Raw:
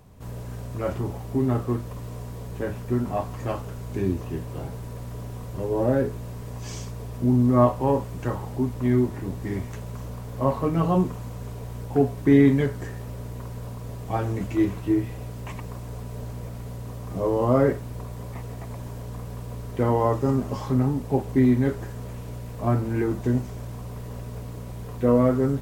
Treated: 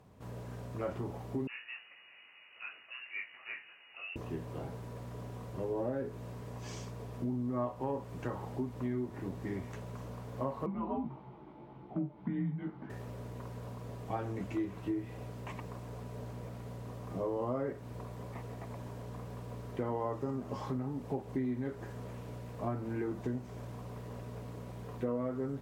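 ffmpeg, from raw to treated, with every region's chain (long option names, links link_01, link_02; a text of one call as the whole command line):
ffmpeg -i in.wav -filter_complex "[0:a]asettb=1/sr,asplit=3[link_01][link_02][link_03];[link_01]atrim=end=1.474[link_04];[link_02]atrim=start=1.47:end=4.16,asetpts=PTS-STARTPTS,afade=type=in:duration=0.004:curve=qsin,afade=type=out:start_time=2.686:duration=0.004:curve=qsin,highpass=frequency=960:poles=1,flanger=delay=17.5:depth=7.6:speed=2.7,lowpass=frequency=2600:width_type=q:width=0.5098,lowpass=frequency=2600:width_type=q:width=0.6013,lowpass=frequency=2600:width_type=q:width=0.9,lowpass=frequency=2600:width_type=q:width=2.563,afreqshift=-3000[link_05];[link_03]atrim=start=4.156[link_06];[link_04][link_05]acrossfade=duration=0.004:curve1=hsin:curve2=qsin[link_07];[link_07][link_06]acrossfade=duration=0.004:curve1=qsin:curve2=hsin,asettb=1/sr,asplit=3[link_08][link_09][link_10];[link_08]atrim=end=10.664[link_11];[link_09]atrim=start=10.66:end=12.9,asetpts=PTS-STARTPTS,afade=type=in:duration=0.004:curve=qsin,afade=type=out:start_time=2.236:duration=0.004:curve=qsin,flanger=delay=16:depth=3:speed=1.8,afreqshift=-110,highpass=130,equalizer=frequency=140:width_type=q:width=4:gain=9,equalizer=frequency=220:width_type=q:width=4:gain=6,equalizer=frequency=500:width_type=q:width=4:gain=-7,equalizer=frequency=850:width_type=q:width=4:gain=3,equalizer=frequency=1700:width_type=q:width=4:gain=-10,equalizer=frequency=2700:width_type=q:width=4:gain=-6,lowpass=frequency=2900:width=0.5412,lowpass=frequency=2900:width=1.3066[link_12];[link_10]atrim=start=12.896[link_13];[link_11][link_12]acrossfade=duration=0.004:curve1=hsin:curve2=qsin[link_14];[link_14][link_13]acrossfade=duration=0.004:curve1=qsin:curve2=hsin,aemphasis=mode=reproduction:type=cd,acompressor=threshold=-26dB:ratio=5,highpass=frequency=160:poles=1,volume=-5dB" out.wav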